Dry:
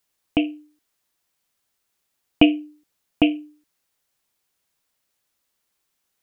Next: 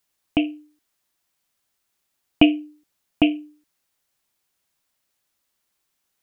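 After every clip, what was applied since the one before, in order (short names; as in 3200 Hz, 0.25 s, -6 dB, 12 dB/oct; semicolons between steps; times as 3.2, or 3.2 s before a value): notch 470 Hz, Q 12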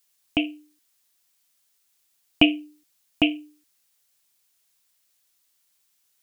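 high shelf 2200 Hz +12 dB; gain -4.5 dB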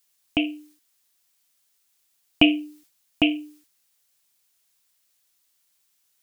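sustainer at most 120 dB/s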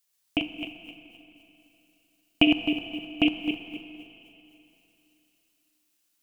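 regenerating reverse delay 0.13 s, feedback 55%, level -4 dB; transient shaper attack +3 dB, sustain -10 dB; Schroeder reverb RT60 3.2 s, DRR 10 dB; gain -6 dB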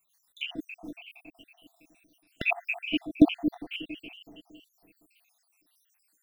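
random spectral dropouts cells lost 76%; gain +8.5 dB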